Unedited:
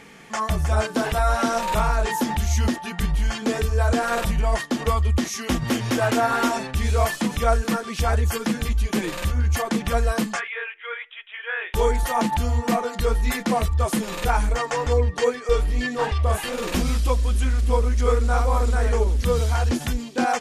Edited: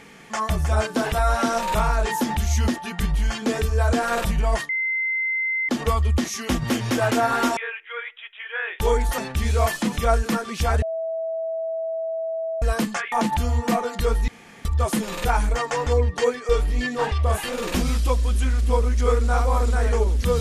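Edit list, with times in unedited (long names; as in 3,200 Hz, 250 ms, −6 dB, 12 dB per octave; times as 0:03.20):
0:04.69: insert tone 2,070 Hz −21 dBFS 1.00 s
0:08.21–0:10.01: beep over 652 Hz −24 dBFS
0:10.51–0:12.12: move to 0:06.57
0:13.28–0:13.65: fill with room tone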